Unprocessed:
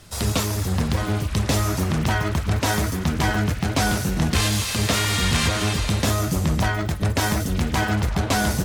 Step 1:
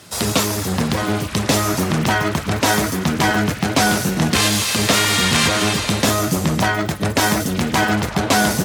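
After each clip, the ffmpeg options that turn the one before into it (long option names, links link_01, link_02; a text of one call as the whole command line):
ffmpeg -i in.wav -af "highpass=160,volume=6.5dB" out.wav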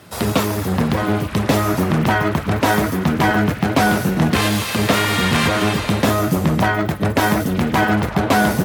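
ffmpeg -i in.wav -af "equalizer=frequency=6700:width=0.55:gain=-11.5,volume=2dB" out.wav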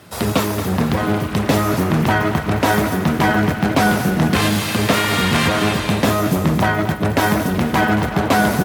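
ffmpeg -i in.wav -af "aecho=1:1:227|454|681|908|1135:0.266|0.128|0.0613|0.0294|0.0141" out.wav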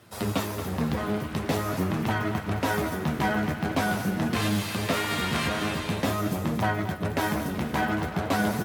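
ffmpeg -i in.wav -af "flanger=delay=8.5:depth=6.1:regen=41:speed=0.46:shape=triangular,volume=-6.5dB" out.wav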